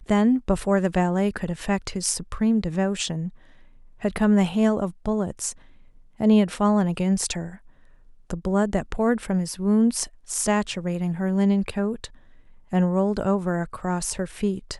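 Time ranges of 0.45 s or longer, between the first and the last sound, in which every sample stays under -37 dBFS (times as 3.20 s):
3.29–4.02 s
5.52–6.20 s
7.56–8.30 s
12.06–12.72 s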